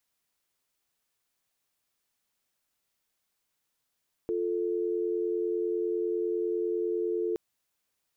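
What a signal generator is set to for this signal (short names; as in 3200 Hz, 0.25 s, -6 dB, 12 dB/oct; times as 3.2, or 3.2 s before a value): call progress tone dial tone, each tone -29.5 dBFS 3.07 s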